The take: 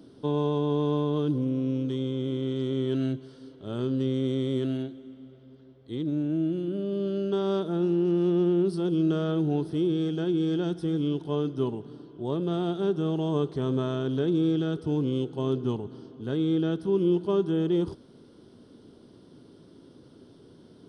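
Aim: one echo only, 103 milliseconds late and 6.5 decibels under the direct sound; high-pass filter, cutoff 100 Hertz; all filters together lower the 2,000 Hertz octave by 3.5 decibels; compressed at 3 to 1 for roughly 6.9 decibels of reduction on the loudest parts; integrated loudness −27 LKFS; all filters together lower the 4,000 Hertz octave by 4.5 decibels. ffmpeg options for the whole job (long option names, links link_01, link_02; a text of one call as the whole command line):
ffmpeg -i in.wav -af "highpass=100,equalizer=frequency=2000:width_type=o:gain=-4.5,equalizer=frequency=4000:width_type=o:gain=-4,acompressor=threshold=-30dB:ratio=3,aecho=1:1:103:0.473,volume=5dB" out.wav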